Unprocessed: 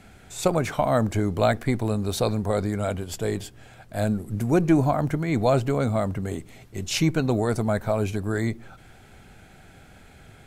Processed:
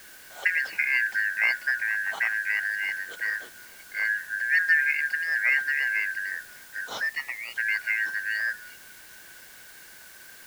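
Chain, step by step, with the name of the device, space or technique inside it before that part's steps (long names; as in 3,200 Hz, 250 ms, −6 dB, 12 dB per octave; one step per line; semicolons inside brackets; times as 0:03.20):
0:07.01–0:07.56: high-pass filter 250 Hz → 960 Hz 24 dB per octave
split-band scrambled radio (band-splitting scrambler in four parts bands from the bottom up 3142; band-pass filter 310–3,000 Hz; white noise bed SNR 21 dB)
level −2.5 dB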